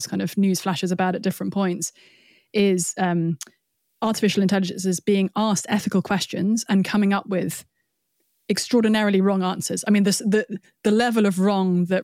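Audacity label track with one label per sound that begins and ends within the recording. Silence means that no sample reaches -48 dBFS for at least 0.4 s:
4.020000	7.630000	sound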